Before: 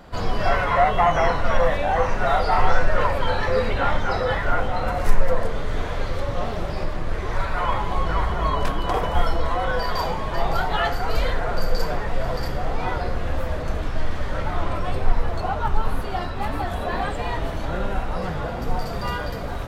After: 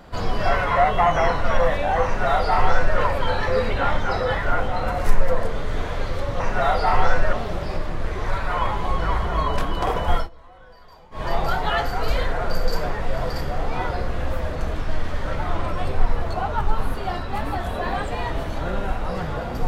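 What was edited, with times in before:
2.05–2.98 copy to 6.4
9.24–10.3 dip -24 dB, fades 0.12 s

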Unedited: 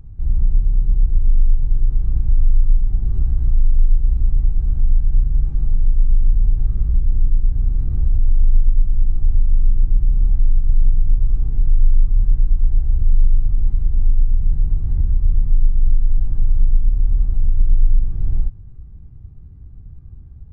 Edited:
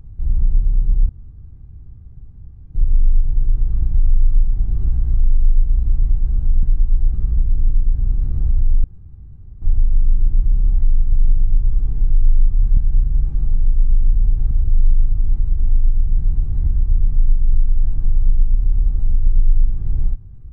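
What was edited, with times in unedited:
1.09 insert room tone 1.66 s
4.97–6.71 swap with 12.34–12.85
8.41–9.19 room tone

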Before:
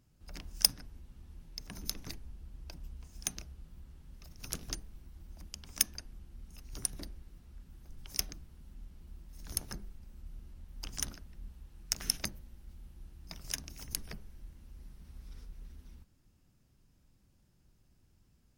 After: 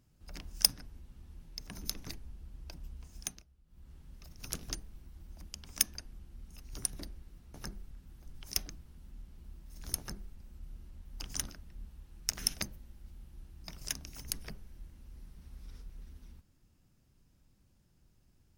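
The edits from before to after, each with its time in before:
3.17–3.93 dip -16.5 dB, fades 0.27 s
9.61–9.98 copy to 7.54

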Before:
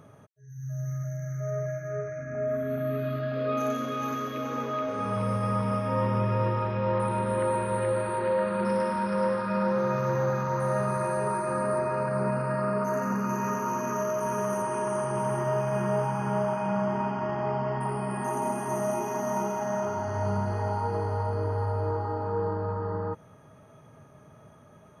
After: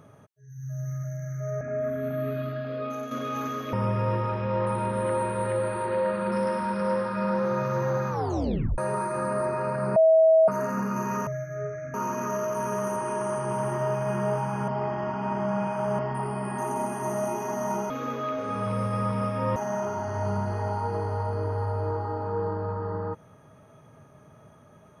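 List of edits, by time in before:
1.61–2.28 move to 13.6
2.98–3.78 fade out linear, to -7.5 dB
4.4–6.06 move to 19.56
10.43 tape stop 0.68 s
12.29–12.81 bleep 644 Hz -14 dBFS
16.34–17.65 reverse

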